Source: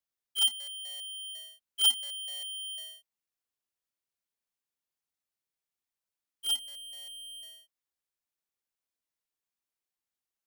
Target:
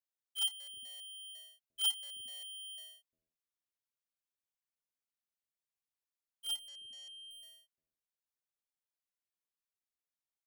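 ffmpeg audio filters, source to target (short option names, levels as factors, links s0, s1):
-filter_complex "[0:a]asettb=1/sr,asplit=3[s0][s1][s2];[s0]atrim=end=6.684[s3];[s1]atrim=start=6.68:end=7.31,asetpts=PTS-STARTPTS,afade=t=in:d=0.004:c=qsin,afade=t=out:st=0.626:d=0.004:c=qsin,lowpass=f=6100:t=q:w=3[s4];[s2]atrim=start=7.306[s5];[s3][s4]acrossfade=d=0.004:c1=hsin:c2=qsin[s6];[s6][s5]acrossfade=d=0.004:c1=qsin:c2=hsin,acrossover=split=300[s7][s8];[s7]adelay=350[s9];[s9][s8]amix=inputs=2:normalize=0,volume=0.398"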